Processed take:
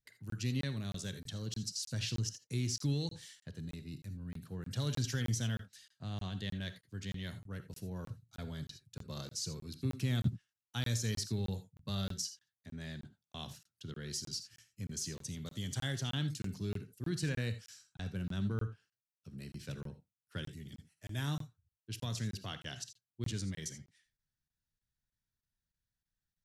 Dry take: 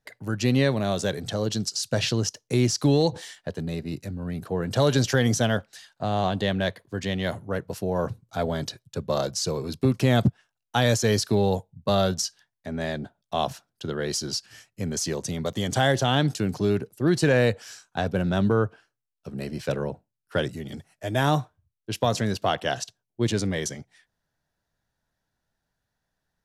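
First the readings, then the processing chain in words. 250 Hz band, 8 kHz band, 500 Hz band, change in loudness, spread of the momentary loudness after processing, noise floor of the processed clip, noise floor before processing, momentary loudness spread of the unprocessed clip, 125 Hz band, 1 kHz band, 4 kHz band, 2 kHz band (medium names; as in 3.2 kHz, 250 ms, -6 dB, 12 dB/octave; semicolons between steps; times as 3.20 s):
-14.5 dB, -10.5 dB, -23.0 dB, -14.0 dB, 13 LU, under -85 dBFS, -82 dBFS, 12 LU, -10.5 dB, -23.5 dB, -11.5 dB, -16.0 dB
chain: amplifier tone stack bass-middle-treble 6-0-2; gated-style reverb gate 100 ms rising, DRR 11 dB; crackling interface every 0.31 s, samples 1024, zero, from 0.30 s; trim +4 dB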